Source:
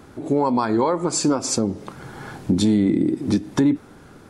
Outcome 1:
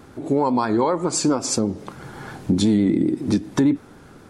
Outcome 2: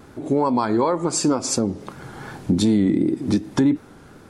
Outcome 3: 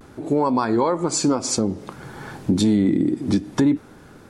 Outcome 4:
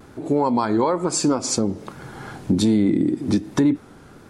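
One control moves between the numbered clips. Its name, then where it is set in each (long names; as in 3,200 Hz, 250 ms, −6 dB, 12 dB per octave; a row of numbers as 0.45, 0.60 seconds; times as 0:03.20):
pitch vibrato, speed: 7.9, 2.7, 0.55, 1.2 Hertz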